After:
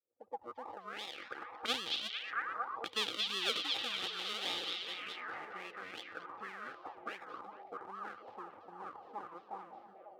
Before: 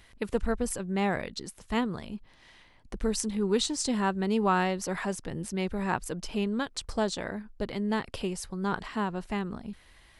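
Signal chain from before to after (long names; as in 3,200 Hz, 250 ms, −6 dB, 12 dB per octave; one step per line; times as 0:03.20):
fade in at the beginning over 2.17 s
source passing by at 0:02.37, 15 m/s, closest 6.2 metres
sample-and-hold swept by an LFO 41×, swing 60% 2.6 Hz
high-pass filter 72 Hz
parametric band 100 Hz +14.5 dB 0.33 octaves
on a send: echo through a band-pass that steps 226 ms, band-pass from 3,700 Hz, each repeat −0.7 octaves, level 0 dB
on the sum: envelope filter 560–3,400 Hz, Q 4.1, up, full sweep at −40.5 dBFS
high-shelf EQ 6,500 Hz +5 dB
hollow resonant body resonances 330/480/800/1,200 Hz, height 12 dB, ringing for 30 ms
level +14 dB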